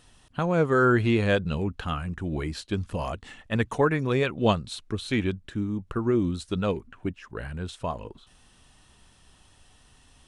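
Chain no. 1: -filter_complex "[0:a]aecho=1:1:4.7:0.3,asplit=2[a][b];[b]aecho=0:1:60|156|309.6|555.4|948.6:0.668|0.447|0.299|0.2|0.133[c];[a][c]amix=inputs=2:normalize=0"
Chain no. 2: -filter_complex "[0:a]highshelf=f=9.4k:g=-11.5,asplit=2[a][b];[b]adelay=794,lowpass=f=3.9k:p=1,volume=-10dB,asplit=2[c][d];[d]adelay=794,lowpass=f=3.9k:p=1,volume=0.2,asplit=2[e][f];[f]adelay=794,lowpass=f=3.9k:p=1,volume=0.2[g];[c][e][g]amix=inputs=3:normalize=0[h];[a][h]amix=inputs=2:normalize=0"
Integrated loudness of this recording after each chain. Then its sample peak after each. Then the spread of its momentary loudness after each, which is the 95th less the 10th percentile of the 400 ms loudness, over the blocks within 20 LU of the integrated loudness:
-24.0, -27.0 LUFS; -7.0, -9.0 dBFS; 14, 15 LU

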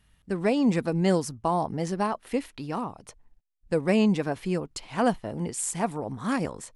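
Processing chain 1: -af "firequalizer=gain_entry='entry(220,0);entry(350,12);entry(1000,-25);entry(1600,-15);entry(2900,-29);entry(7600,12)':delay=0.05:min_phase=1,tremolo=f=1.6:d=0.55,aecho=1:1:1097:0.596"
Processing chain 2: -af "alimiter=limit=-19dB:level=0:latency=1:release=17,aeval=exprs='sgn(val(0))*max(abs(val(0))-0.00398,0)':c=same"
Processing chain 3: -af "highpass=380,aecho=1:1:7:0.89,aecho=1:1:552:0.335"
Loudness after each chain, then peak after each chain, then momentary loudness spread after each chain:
-24.0, -31.0, -28.0 LUFS; -4.0, -19.5, -10.5 dBFS; 12, 7, 10 LU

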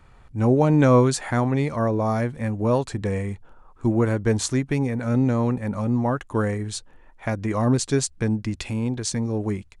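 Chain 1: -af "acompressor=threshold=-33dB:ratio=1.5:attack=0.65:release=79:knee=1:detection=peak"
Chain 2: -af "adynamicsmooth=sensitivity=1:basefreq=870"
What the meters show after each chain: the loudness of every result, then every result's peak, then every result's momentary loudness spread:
-29.5, -23.5 LUFS; -15.0, -6.5 dBFS; 8, 11 LU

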